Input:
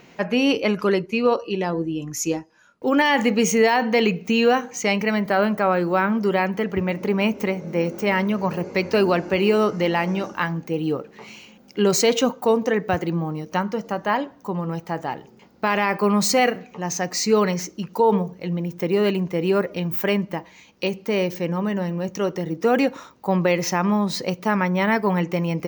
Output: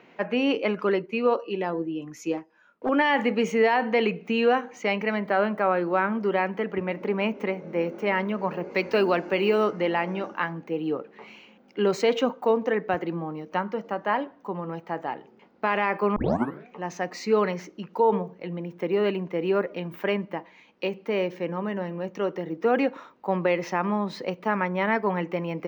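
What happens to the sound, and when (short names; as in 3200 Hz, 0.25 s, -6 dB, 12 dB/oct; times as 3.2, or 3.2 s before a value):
2.37–2.89 Doppler distortion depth 0.64 ms
8.7–9.71 high shelf 3900 Hz -> 5700 Hz +10.5 dB
16.16 tape start 0.52 s
whole clip: three-band isolator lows -14 dB, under 200 Hz, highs -19 dB, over 3400 Hz; gain -3 dB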